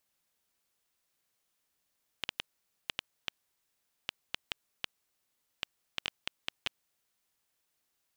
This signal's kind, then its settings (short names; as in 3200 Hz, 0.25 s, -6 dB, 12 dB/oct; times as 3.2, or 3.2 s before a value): random clicks 3.6/s -14 dBFS 4.99 s